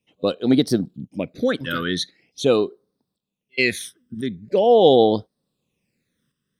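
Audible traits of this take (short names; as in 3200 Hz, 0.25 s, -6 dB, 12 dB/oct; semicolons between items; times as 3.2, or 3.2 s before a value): phasing stages 12, 0.43 Hz, lowest notch 750–2500 Hz; tremolo saw up 0.95 Hz, depth 55%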